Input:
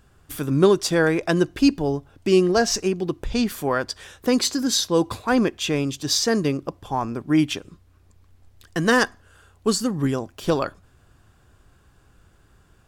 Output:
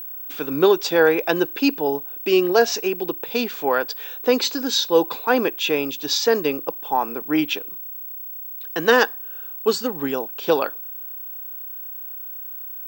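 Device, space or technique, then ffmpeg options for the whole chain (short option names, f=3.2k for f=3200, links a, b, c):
old television with a line whistle: -af "highpass=f=190:w=0.5412,highpass=f=190:w=1.3066,equalizer=f=200:t=q:w=4:g=-8,equalizer=f=470:t=q:w=4:g=8,equalizer=f=850:t=q:w=4:g=9,equalizer=f=1.5k:t=q:w=4:g=5,equalizer=f=2.6k:t=q:w=4:g=8,equalizer=f=3.7k:t=q:w=4:g=6,lowpass=f=6.8k:w=0.5412,lowpass=f=6.8k:w=1.3066,aeval=exprs='val(0)+0.0355*sin(2*PI*15734*n/s)':c=same,volume=-2dB"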